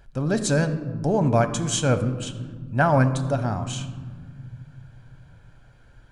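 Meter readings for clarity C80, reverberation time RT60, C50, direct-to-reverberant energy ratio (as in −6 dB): 13.0 dB, 1.7 s, 11.5 dB, 8.0 dB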